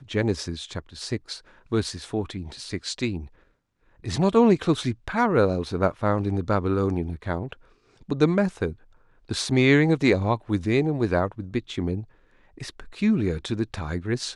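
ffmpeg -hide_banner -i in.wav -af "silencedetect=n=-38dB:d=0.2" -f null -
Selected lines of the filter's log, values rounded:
silence_start: 1.39
silence_end: 1.72 | silence_duration: 0.33
silence_start: 3.27
silence_end: 4.04 | silence_duration: 0.78
silence_start: 7.53
silence_end: 8.09 | silence_duration: 0.56
silence_start: 8.73
silence_end: 9.29 | silence_duration: 0.56
silence_start: 12.04
silence_end: 12.58 | silence_duration: 0.54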